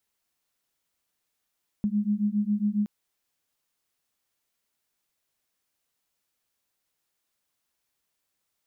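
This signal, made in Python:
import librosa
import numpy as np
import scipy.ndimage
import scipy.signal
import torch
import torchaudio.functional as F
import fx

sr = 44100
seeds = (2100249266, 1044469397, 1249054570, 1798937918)

y = fx.two_tone_beats(sr, length_s=1.02, hz=204.0, beat_hz=7.3, level_db=-26.0)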